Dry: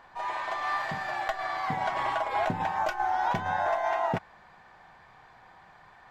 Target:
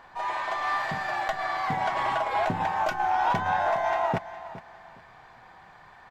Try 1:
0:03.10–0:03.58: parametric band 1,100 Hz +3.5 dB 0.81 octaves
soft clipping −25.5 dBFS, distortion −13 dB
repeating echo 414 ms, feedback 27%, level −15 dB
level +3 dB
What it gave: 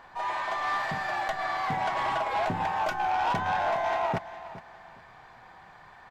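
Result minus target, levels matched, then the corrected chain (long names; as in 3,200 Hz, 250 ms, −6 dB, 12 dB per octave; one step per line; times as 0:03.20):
soft clipping: distortion +8 dB
0:03.10–0:03.58: parametric band 1,100 Hz +3.5 dB 0.81 octaves
soft clipping −19.5 dBFS, distortion −21 dB
repeating echo 414 ms, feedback 27%, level −15 dB
level +3 dB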